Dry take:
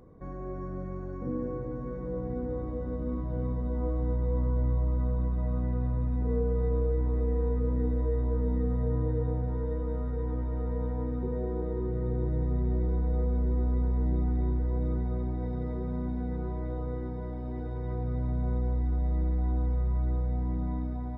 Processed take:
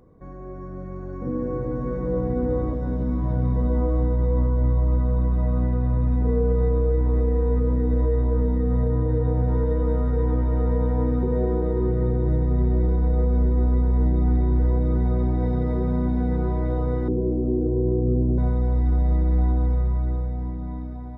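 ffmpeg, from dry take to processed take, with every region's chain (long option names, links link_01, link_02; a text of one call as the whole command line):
ffmpeg -i in.wav -filter_complex "[0:a]asettb=1/sr,asplit=3[link_01][link_02][link_03];[link_01]atrim=end=2.734[link_04];[link_02]atrim=start=2.73:end=3.56,asetpts=PTS-STARTPTS,afade=type=in:duration=0.004:curve=qsin,afade=type=out:start_time=0.826:duration=0.004:curve=qsin,highpass=frequency=85:poles=1,acrossover=split=220|3000[link_05][link_06][link_07];[link_06]acompressor=threshold=-40dB:ratio=2:attack=3.2:release=140:knee=2.83:detection=peak[link_08];[link_05][link_08][link_07]amix=inputs=3:normalize=0,asplit=2[link_09][link_10];[link_10]adelay=15,volume=-4dB[link_11];[link_09][link_11]amix=inputs=2:normalize=0,atrim=end_sample=36603[link_12];[link_03]atrim=start=3.556[link_13];[link_04][link_12]acrossfade=duration=0.004:curve1=hsin:curve2=qsin[link_14];[link_14][link_13]acrossfade=duration=0.004:curve1=qsin:curve2=hsin,asettb=1/sr,asplit=3[link_15][link_16][link_17];[link_15]atrim=end=17.084[link_18];[link_16]atrim=start=17.08:end=18.38,asetpts=PTS-STARTPTS,afade=type=in:duration=0.004:curve=qsin,afade=type=out:start_time=1.296:duration=0.004:curve=qsin,lowpass=frequency=380:width_type=q:width=3.9,bandreject=frequency=50:width_type=h:width=6,bandreject=frequency=100:width_type=h:width=6,bandreject=frequency=150:width_type=h:width=6[link_19];[link_17]atrim=start=18.376[link_20];[link_18][link_19]acrossfade=duration=0.004:curve1=hsin:curve2=qsin[link_21];[link_21][link_20]acrossfade=duration=0.004:curve1=qsin:curve2=hsin,alimiter=limit=-23.5dB:level=0:latency=1:release=87,dynaudnorm=framelen=130:gausssize=21:maxgain=10dB" out.wav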